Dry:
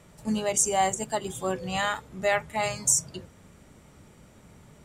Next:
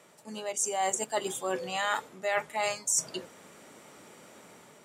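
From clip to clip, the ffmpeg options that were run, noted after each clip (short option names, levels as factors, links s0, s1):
-af "areverse,acompressor=threshold=0.0251:ratio=6,areverse,highpass=350,dynaudnorm=f=220:g=5:m=2"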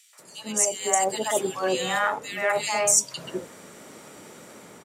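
-filter_complex "[0:a]acrossover=split=860|2600[s0][s1][s2];[s1]adelay=130[s3];[s0]adelay=190[s4];[s4][s3][s2]amix=inputs=3:normalize=0,volume=2.51"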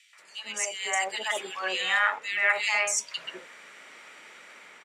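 -af "bandpass=f=2200:t=q:w=1.8:csg=0,volume=2.11"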